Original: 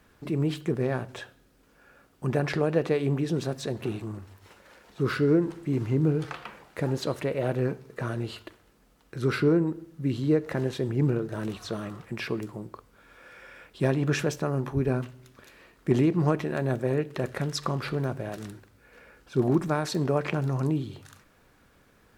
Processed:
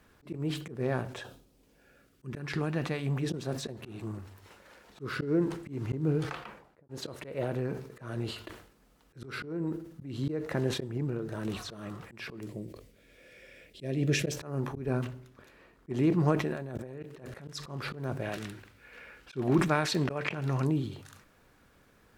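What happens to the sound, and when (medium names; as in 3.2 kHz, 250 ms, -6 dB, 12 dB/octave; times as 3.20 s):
1.22–3.22 s: peaking EQ 2.1 kHz -> 310 Hz -13 dB
6.25–6.89 s: studio fade out
7.43–10.16 s: compression, threshold -25 dBFS
10.97–11.45 s: compression 2:1, threshold -31 dBFS
12.47–14.32 s: high-order bell 1.1 kHz -15.5 dB 1.2 oct
15.07–15.90 s: treble shelf 2.2 kHz -8 dB
16.51–17.48 s: compressor with a negative ratio -35 dBFS
18.22–20.65 s: peaking EQ 2.5 kHz +9 dB 1.6 oct
whole clip: slow attack 208 ms; decay stretcher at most 89 dB/s; trim -2 dB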